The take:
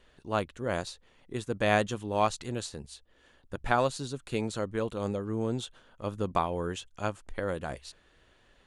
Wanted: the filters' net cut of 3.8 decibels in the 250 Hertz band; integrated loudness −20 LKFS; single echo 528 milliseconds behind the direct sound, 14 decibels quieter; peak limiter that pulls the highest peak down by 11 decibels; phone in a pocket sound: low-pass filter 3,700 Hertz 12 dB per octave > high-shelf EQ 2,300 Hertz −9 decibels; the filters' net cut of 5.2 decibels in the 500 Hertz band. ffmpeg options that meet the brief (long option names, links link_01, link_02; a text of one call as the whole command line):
ffmpeg -i in.wav -af "equalizer=frequency=250:width_type=o:gain=-3.5,equalizer=frequency=500:width_type=o:gain=-5,alimiter=limit=-22.5dB:level=0:latency=1,lowpass=3700,highshelf=frequency=2300:gain=-9,aecho=1:1:528:0.2,volume=19dB" out.wav